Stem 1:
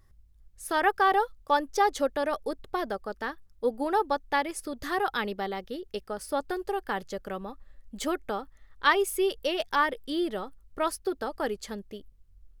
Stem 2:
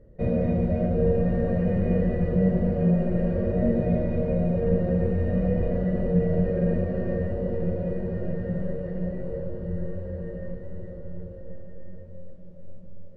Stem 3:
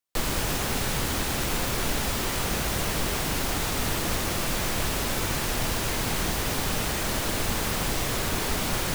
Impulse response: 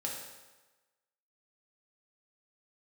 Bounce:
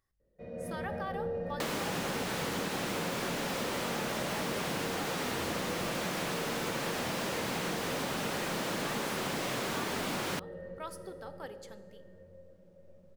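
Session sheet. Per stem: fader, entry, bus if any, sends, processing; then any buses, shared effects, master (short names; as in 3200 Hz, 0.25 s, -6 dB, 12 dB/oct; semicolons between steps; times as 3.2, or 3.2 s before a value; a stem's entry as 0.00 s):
-14.5 dB, 0.00 s, bus A, send -9.5 dB, dry
-16.0 dB, 0.20 s, bus A, send -15 dB, high shelf 5500 Hz +8 dB; AGC
+1.0 dB, 1.45 s, no bus, no send, HPF 150 Hz 24 dB/oct; slew limiter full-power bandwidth 100 Hz
bus A: 0.0 dB, HPF 510 Hz 6 dB/oct; limiter -29 dBFS, peak gain reduction 7 dB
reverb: on, RT60 1.2 s, pre-delay 3 ms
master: compressor, threshold -31 dBFS, peak gain reduction 7 dB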